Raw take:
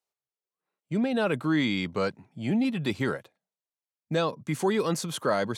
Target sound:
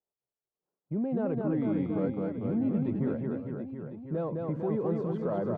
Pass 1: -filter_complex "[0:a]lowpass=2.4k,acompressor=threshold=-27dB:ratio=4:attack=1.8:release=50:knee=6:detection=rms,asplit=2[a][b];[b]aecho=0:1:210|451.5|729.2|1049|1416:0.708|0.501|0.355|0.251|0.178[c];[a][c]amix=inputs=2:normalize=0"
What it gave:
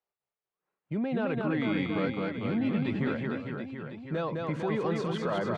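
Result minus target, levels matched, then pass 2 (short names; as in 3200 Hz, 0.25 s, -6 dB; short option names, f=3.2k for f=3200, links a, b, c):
2000 Hz band +14.5 dB
-filter_complex "[0:a]lowpass=650,acompressor=threshold=-27dB:ratio=4:attack=1.8:release=50:knee=6:detection=rms,asplit=2[a][b];[b]aecho=0:1:210|451.5|729.2|1049|1416:0.708|0.501|0.355|0.251|0.178[c];[a][c]amix=inputs=2:normalize=0"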